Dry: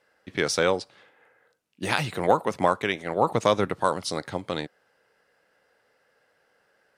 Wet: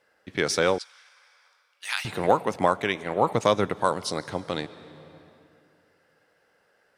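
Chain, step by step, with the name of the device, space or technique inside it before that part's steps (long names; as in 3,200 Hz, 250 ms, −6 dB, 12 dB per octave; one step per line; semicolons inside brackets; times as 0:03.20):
compressed reverb return (on a send at −8 dB: convolution reverb RT60 2.1 s, pre-delay 118 ms + downward compressor 5 to 1, threshold −35 dBFS, peak gain reduction 15 dB)
0:00.78–0:02.05: on the sum: Bessel high-pass filter 1,700 Hz, order 4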